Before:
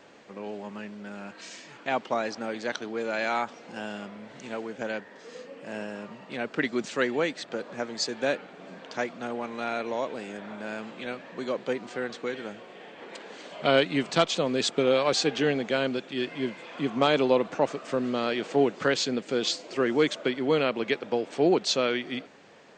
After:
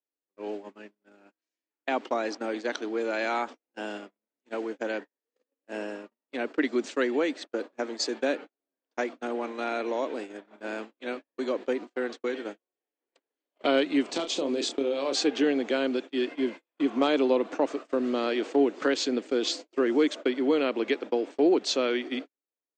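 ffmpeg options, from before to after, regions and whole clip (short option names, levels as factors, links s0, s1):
-filter_complex "[0:a]asettb=1/sr,asplit=3[s0][s1][s2];[s0]atrim=end=14.104[s3];[s1]atrim=start=14.1:end=15.15,asetpts=PTS-STARTPTS,afade=t=in:d=0.004:c=qsin,afade=t=out:st=1.046:d=0.004:c=qsin,equalizer=f=1500:t=o:w=1.4:g=-6,acompressor=threshold=0.0562:ratio=6:attack=3.2:release=140:knee=1:detection=peak,asplit=2[s4][s5];[s5]adelay=29,volume=0.447[s6];[s4][s6]amix=inputs=2:normalize=0,atrim=end_sample=46305[s7];[s2]atrim=start=15.146[s8];[s3][s7]acrossfade=d=0.004:c1=hsin:c2=qsin[s9];[s9][s8]acrossfade=d=0.004:c1=qsin:c2=hsin,agate=range=0.00316:threshold=0.0158:ratio=16:detection=peak,lowshelf=f=210:t=q:w=3:g=-11,acrossover=split=170[s10][s11];[s11]acompressor=threshold=0.0447:ratio=1.5[s12];[s10][s12]amix=inputs=2:normalize=0"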